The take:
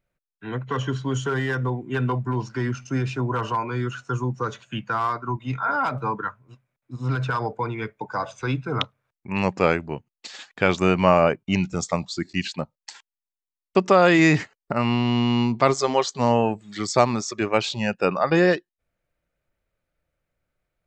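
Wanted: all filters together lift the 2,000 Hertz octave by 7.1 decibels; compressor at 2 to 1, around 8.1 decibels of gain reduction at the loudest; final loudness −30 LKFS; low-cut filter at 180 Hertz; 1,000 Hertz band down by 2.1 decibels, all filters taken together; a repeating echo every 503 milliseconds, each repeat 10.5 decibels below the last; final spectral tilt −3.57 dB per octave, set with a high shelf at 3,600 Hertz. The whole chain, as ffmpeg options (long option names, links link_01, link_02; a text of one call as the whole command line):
ffmpeg -i in.wav -af "highpass=180,equalizer=frequency=1000:width_type=o:gain=-6.5,equalizer=frequency=2000:width_type=o:gain=8.5,highshelf=frequency=3600:gain=8,acompressor=threshold=-24dB:ratio=2,aecho=1:1:503|1006|1509:0.299|0.0896|0.0269,volume=-3.5dB" out.wav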